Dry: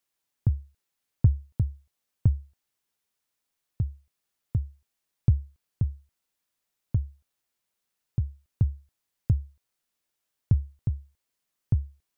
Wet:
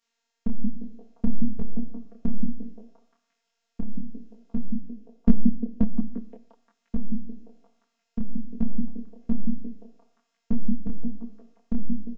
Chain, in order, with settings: resampled via 16 kHz; in parallel at -1.5 dB: peak limiter -18 dBFS, peak gain reduction 9 dB; on the sum: robot voice 231 Hz; Schroeder reverb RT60 0.69 s, combs from 26 ms, DRR 7 dB; 4.65–5.83 s: transient shaper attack +7 dB, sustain -4 dB; on a send: repeats whose band climbs or falls 175 ms, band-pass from 210 Hz, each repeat 0.7 oct, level -1 dB; on the sum: detune thickener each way 40 cents; trim +6 dB

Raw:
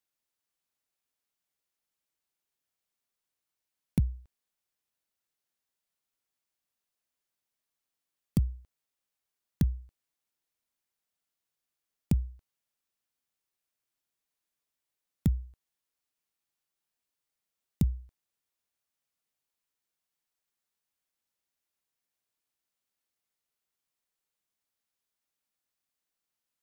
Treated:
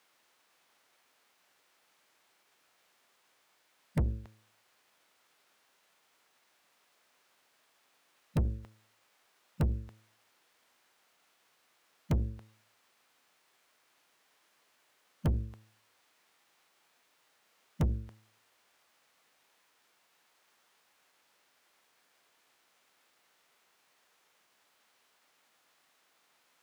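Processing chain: formant shift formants -3 st; de-hum 109 Hz, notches 5; overdrive pedal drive 37 dB, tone 1.6 kHz, clips at -16.5 dBFS; trim -3.5 dB

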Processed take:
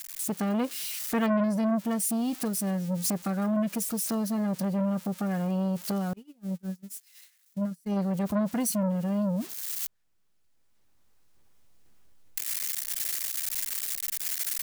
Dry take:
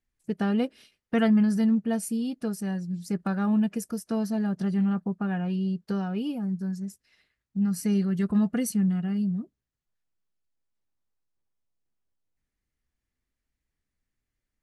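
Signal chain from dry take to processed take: zero-crossing glitches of -29 dBFS; recorder AGC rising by 9.2 dB/s; 6.13–7.97 s: gate -23 dBFS, range -35 dB; transformer saturation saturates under 3.3 kHz

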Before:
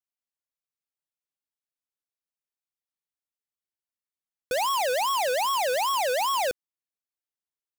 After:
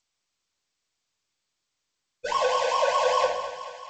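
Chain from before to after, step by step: dynamic bell 580 Hz, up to +4 dB, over -42 dBFS, Q 3.4; plain phase-vocoder stretch 0.5×; thinning echo 218 ms, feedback 66%, high-pass 330 Hz, level -12 dB; simulated room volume 2500 m³, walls furnished, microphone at 5 m; trim -1 dB; G.722 64 kbps 16 kHz

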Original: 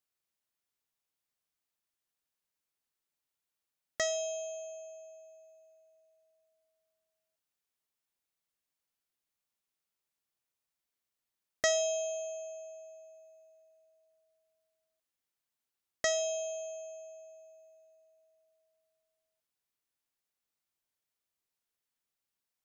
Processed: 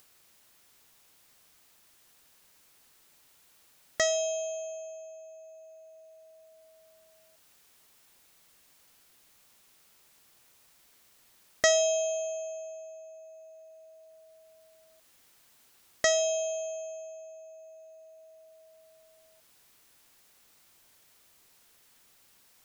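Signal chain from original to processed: upward compressor, threshold -50 dBFS; trim +5.5 dB

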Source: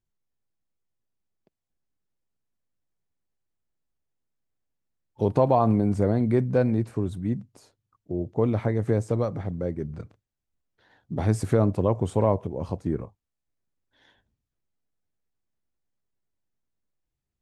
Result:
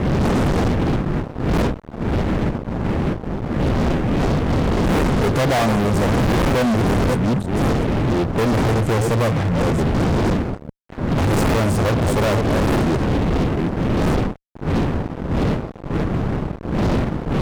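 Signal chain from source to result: chunks repeated in reverse 428 ms, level -9.5 dB; wind noise 250 Hz -25 dBFS; fuzz box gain 36 dB, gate -42 dBFS; trim -2.5 dB

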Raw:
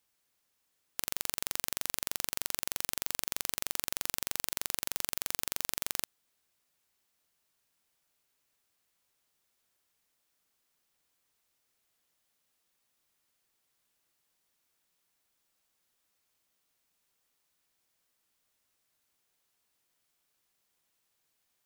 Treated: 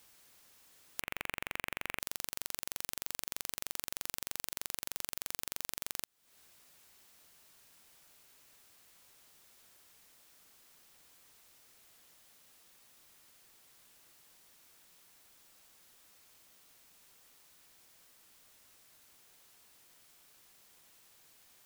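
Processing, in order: 1.01–2.00 s: resonant high shelf 3.5 kHz -13 dB, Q 3; compression 8:1, threshold -48 dBFS, peak gain reduction 20.5 dB; trim +15 dB

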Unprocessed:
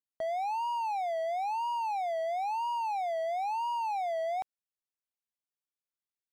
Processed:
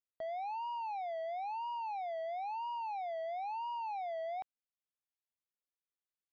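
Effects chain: low-pass 4.5 kHz 24 dB/octave; trim -7 dB

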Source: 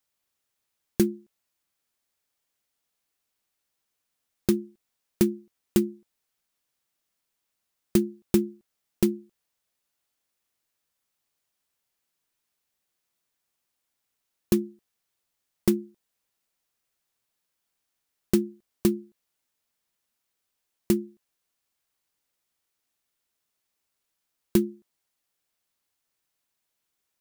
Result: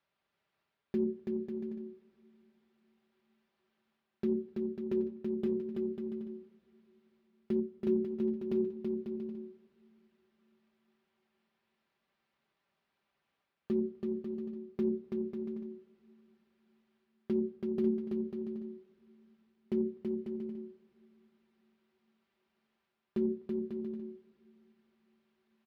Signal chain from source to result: high-pass 65 Hz; hum notches 60/120/180/240/300/360/420/480/540 Hz; comb 5.4 ms, depth 43%; reverse; compression 20:1, threshold -34 dBFS, peak gain reduction 21.5 dB; reverse; tape speed +6%; distance through air 350 m; bouncing-ball echo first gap 330 ms, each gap 0.65×, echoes 5; on a send at -21 dB: reverberation RT60 4.4 s, pre-delay 92 ms; on the sum: trim +6 dB

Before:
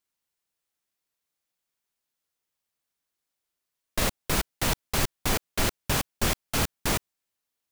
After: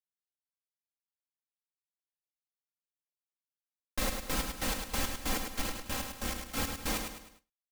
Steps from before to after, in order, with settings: 5.46–6.57 s: partial rectifier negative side -7 dB; comb 3.8 ms, depth 72%; feedback delay 104 ms, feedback 42%, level -6 dB; gate with hold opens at -36 dBFS; trim -9 dB

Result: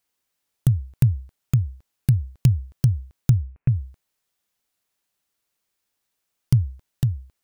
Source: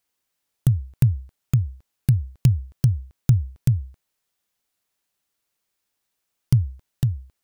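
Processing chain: 3.31–3.75 s: elliptic low-pass 2.6 kHz

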